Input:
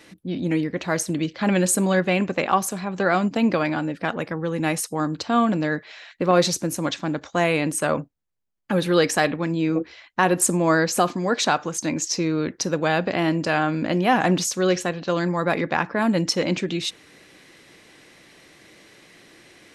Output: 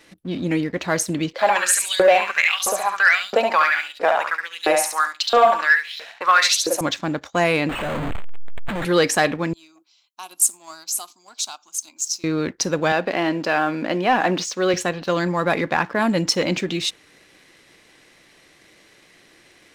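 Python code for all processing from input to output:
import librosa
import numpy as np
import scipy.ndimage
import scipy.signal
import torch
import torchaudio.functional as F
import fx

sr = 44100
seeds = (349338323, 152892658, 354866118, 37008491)

y = fx.chain(x, sr, fx.echo_feedback(ms=70, feedback_pct=35, wet_db=-5.0),
    fx.filter_lfo_highpass(shape='saw_up', hz=1.5, low_hz=430.0, high_hz=4200.0, q=4.3), at=(1.33, 6.81))
y = fx.chain(y, sr, fx.clip_1bit(),
    fx.lowpass(hz=9500.0, slope=12),
    fx.resample_linear(factor=8), at=(7.69, 8.85))
y = fx.chain(y, sr, fx.differentiator(),
    fx.fixed_phaser(hz=490.0, stages=6), at=(9.53, 12.24))
y = fx.chain(y, sr, fx.bandpass_edges(low_hz=230.0, high_hz=6800.0),
    fx.air_absorb(metres=58.0), at=(12.92, 14.74))
y = fx.low_shelf(y, sr, hz=80.0, db=11.5)
y = fx.leveller(y, sr, passes=1)
y = fx.low_shelf(y, sr, hz=300.0, db=-7.5)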